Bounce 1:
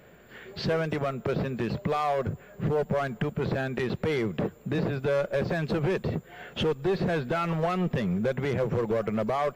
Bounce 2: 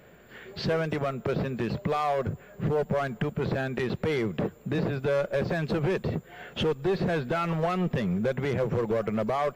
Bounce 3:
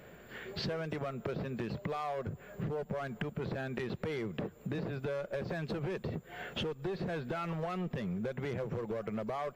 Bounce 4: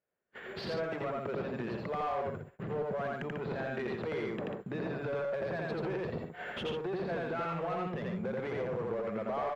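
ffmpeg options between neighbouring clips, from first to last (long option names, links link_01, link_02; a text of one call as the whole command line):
ffmpeg -i in.wav -af anull out.wav
ffmpeg -i in.wav -af "acompressor=threshold=-35dB:ratio=5" out.wav
ffmpeg -i in.wav -filter_complex "[0:a]agate=range=-38dB:threshold=-45dB:ratio=16:detection=peak,aecho=1:1:84.55|142.9:0.891|0.447,asplit=2[link_01][link_02];[link_02]highpass=frequency=720:poles=1,volume=14dB,asoftclip=type=tanh:threshold=-20.5dB[link_03];[link_01][link_03]amix=inputs=2:normalize=0,lowpass=frequency=1200:poles=1,volume=-6dB,volume=-2.5dB" out.wav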